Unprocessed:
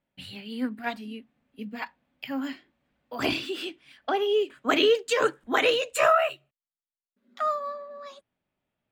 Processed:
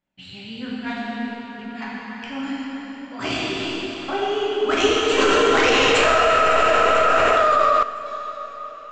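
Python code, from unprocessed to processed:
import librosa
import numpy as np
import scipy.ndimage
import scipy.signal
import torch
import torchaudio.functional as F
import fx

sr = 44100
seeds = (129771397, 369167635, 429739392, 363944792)

y = fx.tracing_dist(x, sr, depth_ms=0.087)
y = scipy.signal.sosfilt(scipy.signal.ellip(4, 1.0, 50, 7500.0, 'lowpass', fs=sr, output='sos'), y)
y = fx.peak_eq(y, sr, hz=520.0, db=-4.0, octaves=0.64)
y = fx.echo_feedback(y, sr, ms=1004, feedback_pct=43, wet_db=-21)
y = fx.rev_plate(y, sr, seeds[0], rt60_s=4.8, hf_ratio=0.65, predelay_ms=0, drr_db=-7.5)
y = fx.env_flatten(y, sr, amount_pct=100, at=(5.18, 7.83))
y = F.gain(torch.from_numpy(y), -1.5).numpy()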